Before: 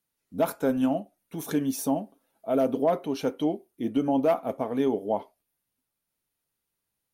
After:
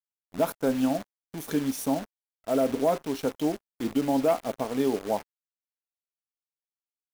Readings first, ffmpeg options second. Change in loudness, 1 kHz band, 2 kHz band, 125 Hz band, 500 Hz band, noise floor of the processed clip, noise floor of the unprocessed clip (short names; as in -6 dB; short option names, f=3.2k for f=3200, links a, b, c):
-0.5 dB, -0.5 dB, +1.5 dB, -0.5 dB, -0.5 dB, under -85 dBFS, -83 dBFS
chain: -af "acrusher=bits=7:dc=4:mix=0:aa=0.000001,aeval=exprs='sgn(val(0))*max(abs(val(0))-0.00562,0)':c=same"